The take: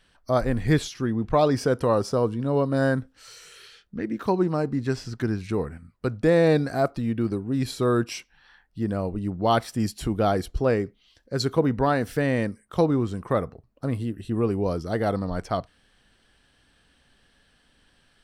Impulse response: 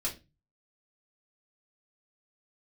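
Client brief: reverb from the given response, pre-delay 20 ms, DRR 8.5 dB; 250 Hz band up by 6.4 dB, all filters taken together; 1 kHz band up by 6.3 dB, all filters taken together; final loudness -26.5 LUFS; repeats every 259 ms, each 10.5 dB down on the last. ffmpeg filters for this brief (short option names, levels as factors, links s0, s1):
-filter_complex "[0:a]equalizer=f=250:t=o:g=7.5,equalizer=f=1000:t=o:g=8,aecho=1:1:259|518|777:0.299|0.0896|0.0269,asplit=2[s0][s1];[1:a]atrim=start_sample=2205,adelay=20[s2];[s1][s2]afir=irnorm=-1:irlink=0,volume=0.266[s3];[s0][s3]amix=inputs=2:normalize=0,volume=0.447"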